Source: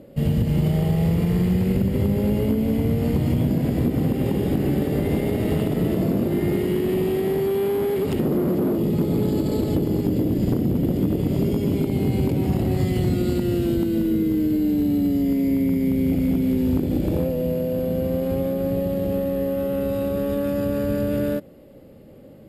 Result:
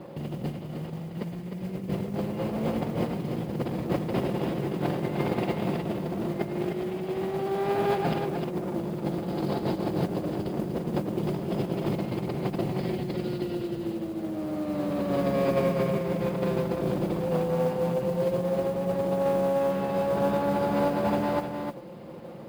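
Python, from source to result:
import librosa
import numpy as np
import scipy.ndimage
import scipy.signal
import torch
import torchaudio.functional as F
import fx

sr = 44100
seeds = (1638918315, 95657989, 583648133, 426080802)

p1 = fx.lower_of_two(x, sr, delay_ms=5.7)
p2 = fx.over_compress(p1, sr, threshold_db=-27.0, ratio=-0.5)
p3 = scipy.signal.sosfilt(scipy.signal.cheby1(10, 1.0, 5200.0, 'lowpass', fs=sr, output='sos'), p2)
p4 = p3 + fx.echo_single(p3, sr, ms=305, db=-6.0, dry=0)
p5 = fx.mod_noise(p4, sr, seeds[0], snr_db=28)
y = scipy.signal.sosfilt(scipy.signal.butter(2, 94.0, 'highpass', fs=sr, output='sos'), p5)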